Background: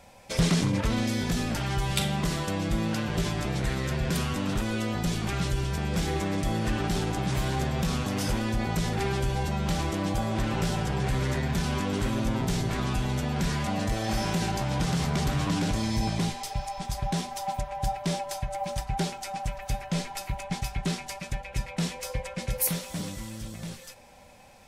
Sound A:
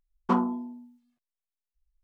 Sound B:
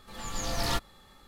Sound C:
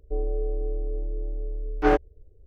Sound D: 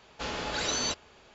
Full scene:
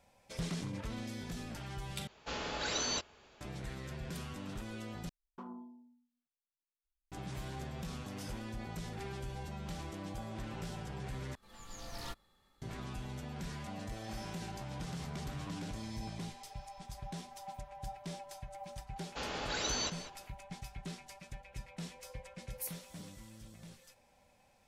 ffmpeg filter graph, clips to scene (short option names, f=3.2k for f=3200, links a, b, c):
-filter_complex "[4:a]asplit=2[a][b];[0:a]volume=-15dB[c];[1:a]alimiter=limit=-21.5dB:level=0:latency=1:release=55[d];[b]asplit=2[e][f];[f]adelay=198.3,volume=-12dB,highshelf=f=4k:g=-4.46[g];[e][g]amix=inputs=2:normalize=0[h];[c]asplit=4[i][j][k][l];[i]atrim=end=2.074[m];[a]atrim=end=1.34,asetpts=PTS-STARTPTS,volume=-5dB[n];[j]atrim=start=3.406:end=5.094[o];[d]atrim=end=2.03,asetpts=PTS-STARTPTS,volume=-17.5dB[p];[k]atrim=start=7.116:end=11.354[q];[2:a]atrim=end=1.27,asetpts=PTS-STARTPTS,volume=-15dB[r];[l]atrim=start=12.616[s];[h]atrim=end=1.34,asetpts=PTS-STARTPTS,volume=-5.5dB,afade=t=in:d=0.004:c=hsin,afade=t=out:st=1.336:d=0.004:c=hsin,adelay=18960[t];[m][n]acrossfade=d=0.004:c1=hsin:c2=hsin[u];[u][o]acrossfade=d=0.004:c1=hsin:c2=hsin[v];[v][p]acrossfade=d=0.004:c1=hsin:c2=hsin[w];[w][q]acrossfade=d=0.004:c1=hsin:c2=hsin[x];[x][r]acrossfade=d=0.004:c1=hsin:c2=hsin[y];[y][s]acrossfade=d=0.004:c1=hsin:c2=hsin[z];[z][t]amix=inputs=2:normalize=0"